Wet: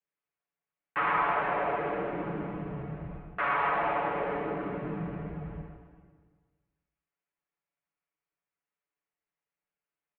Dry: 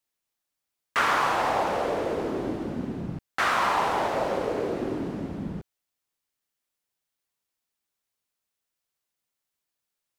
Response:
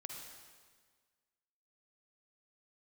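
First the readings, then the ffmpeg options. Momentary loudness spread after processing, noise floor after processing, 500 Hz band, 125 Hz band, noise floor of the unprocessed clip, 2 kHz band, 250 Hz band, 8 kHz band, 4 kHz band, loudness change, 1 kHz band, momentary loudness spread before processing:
13 LU, under -85 dBFS, -5.0 dB, -1.0 dB, -85 dBFS, -4.0 dB, -5.5 dB, under -35 dB, -14.0 dB, -4.5 dB, -4.0 dB, 11 LU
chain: -filter_complex "[0:a]bandreject=f=370:w=12,aecho=1:1:7.3:0.93,acrossover=split=1000[s0][s1];[s0]asoftclip=type=hard:threshold=0.0473[s2];[s2][s1]amix=inputs=2:normalize=0[s3];[1:a]atrim=start_sample=2205[s4];[s3][s4]afir=irnorm=-1:irlink=0,highpass=f=180:t=q:w=0.5412,highpass=f=180:t=q:w=1.307,lowpass=f=2700:t=q:w=0.5176,lowpass=f=2700:t=q:w=0.7071,lowpass=f=2700:t=q:w=1.932,afreqshift=-110,volume=0.794"

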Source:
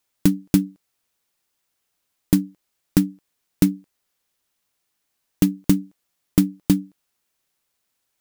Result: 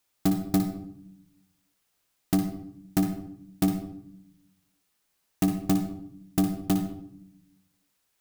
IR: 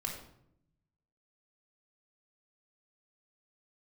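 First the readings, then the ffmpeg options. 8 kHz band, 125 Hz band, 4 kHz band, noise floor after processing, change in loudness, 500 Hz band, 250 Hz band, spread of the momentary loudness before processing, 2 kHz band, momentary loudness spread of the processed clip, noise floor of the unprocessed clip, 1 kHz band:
-6.0 dB, -6.0 dB, -5.5 dB, -75 dBFS, -6.5 dB, -2.5 dB, -6.0 dB, 5 LU, -5.0 dB, 16 LU, -76 dBFS, +6.0 dB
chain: -filter_complex "[0:a]asoftclip=type=tanh:threshold=0.133,asplit=2[s0][s1];[1:a]atrim=start_sample=2205,adelay=58[s2];[s1][s2]afir=irnorm=-1:irlink=0,volume=0.447[s3];[s0][s3]amix=inputs=2:normalize=0"

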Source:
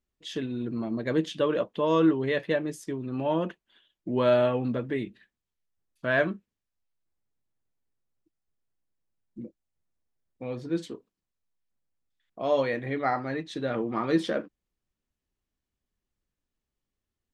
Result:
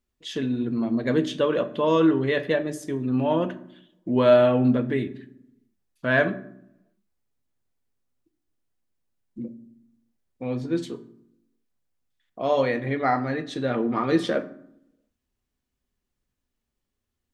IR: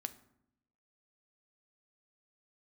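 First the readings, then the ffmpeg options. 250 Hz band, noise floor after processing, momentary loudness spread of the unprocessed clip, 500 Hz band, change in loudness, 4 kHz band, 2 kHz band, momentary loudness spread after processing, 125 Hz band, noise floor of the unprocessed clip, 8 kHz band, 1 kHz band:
+5.0 dB, -82 dBFS, 17 LU, +4.0 dB, +4.5 dB, +3.5 dB, +4.0 dB, 18 LU, +5.0 dB, under -85 dBFS, no reading, +4.0 dB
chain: -filter_complex "[1:a]atrim=start_sample=2205[s0];[0:a][s0]afir=irnorm=-1:irlink=0,volume=2"

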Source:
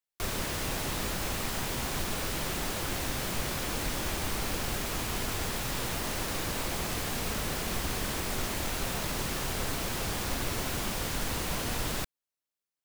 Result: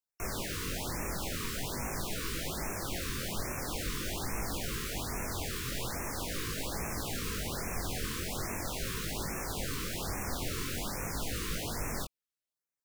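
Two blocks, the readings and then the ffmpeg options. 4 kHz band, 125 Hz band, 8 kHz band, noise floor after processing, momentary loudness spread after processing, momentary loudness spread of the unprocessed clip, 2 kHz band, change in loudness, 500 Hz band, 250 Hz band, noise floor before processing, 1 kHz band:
-4.5 dB, -3.0 dB, -3.0 dB, under -85 dBFS, 1 LU, 0 LU, -4.5 dB, -3.5 dB, -3.5 dB, -3.0 dB, under -85 dBFS, -4.5 dB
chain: -af "flanger=delay=18:depth=6.2:speed=0.44,afftfilt=real='re*(1-between(b*sr/1024,670*pow(3900/670,0.5+0.5*sin(2*PI*1.2*pts/sr))/1.41,670*pow(3900/670,0.5+0.5*sin(2*PI*1.2*pts/sr))*1.41))':imag='im*(1-between(b*sr/1024,670*pow(3900/670,0.5+0.5*sin(2*PI*1.2*pts/sr))/1.41,670*pow(3900/670,0.5+0.5*sin(2*PI*1.2*pts/sr))*1.41))':win_size=1024:overlap=0.75"

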